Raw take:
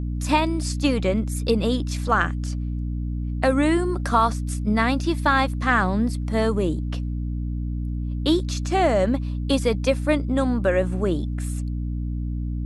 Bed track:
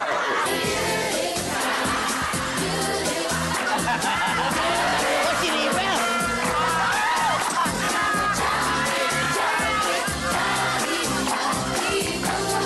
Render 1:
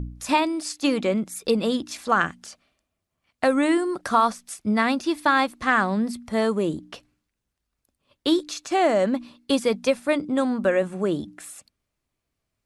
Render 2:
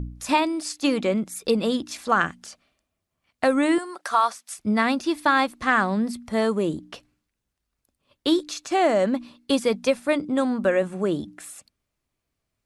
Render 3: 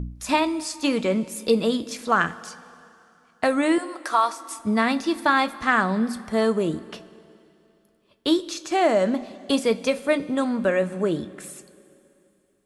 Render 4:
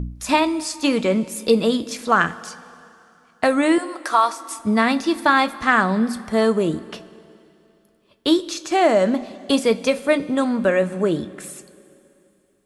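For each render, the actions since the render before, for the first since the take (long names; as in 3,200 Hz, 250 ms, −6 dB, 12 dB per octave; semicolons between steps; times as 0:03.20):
hum removal 60 Hz, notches 5
0:03.78–0:04.57: high-pass filter 690 Hz
coupled-rooms reverb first 0.2 s, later 2.9 s, from −18 dB, DRR 9.5 dB
level +3.5 dB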